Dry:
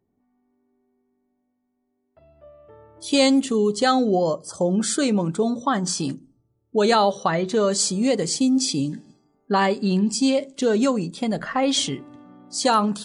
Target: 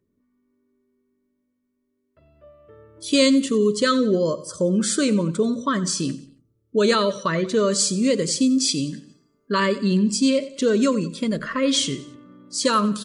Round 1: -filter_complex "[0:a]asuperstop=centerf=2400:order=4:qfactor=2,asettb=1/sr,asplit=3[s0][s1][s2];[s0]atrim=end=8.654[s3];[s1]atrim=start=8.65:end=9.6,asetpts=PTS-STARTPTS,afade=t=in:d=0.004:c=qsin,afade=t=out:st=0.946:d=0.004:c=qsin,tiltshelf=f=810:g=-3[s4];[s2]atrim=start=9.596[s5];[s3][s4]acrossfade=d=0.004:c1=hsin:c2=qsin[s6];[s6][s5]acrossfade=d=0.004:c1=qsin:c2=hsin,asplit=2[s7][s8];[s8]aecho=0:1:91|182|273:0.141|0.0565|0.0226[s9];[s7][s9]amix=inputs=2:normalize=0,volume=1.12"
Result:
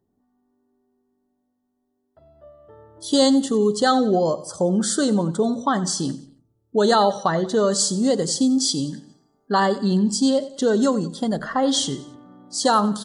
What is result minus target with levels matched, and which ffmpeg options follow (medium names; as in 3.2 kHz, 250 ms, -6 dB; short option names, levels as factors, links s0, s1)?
1 kHz band +4.5 dB
-filter_complex "[0:a]asuperstop=centerf=780:order=4:qfactor=2,asettb=1/sr,asplit=3[s0][s1][s2];[s0]atrim=end=8.654[s3];[s1]atrim=start=8.65:end=9.6,asetpts=PTS-STARTPTS,afade=t=in:d=0.004:c=qsin,afade=t=out:st=0.946:d=0.004:c=qsin,tiltshelf=f=810:g=-3[s4];[s2]atrim=start=9.596[s5];[s3][s4]acrossfade=d=0.004:c1=hsin:c2=qsin[s6];[s6][s5]acrossfade=d=0.004:c1=qsin:c2=hsin,asplit=2[s7][s8];[s8]aecho=0:1:91|182|273:0.141|0.0565|0.0226[s9];[s7][s9]amix=inputs=2:normalize=0,volume=1.12"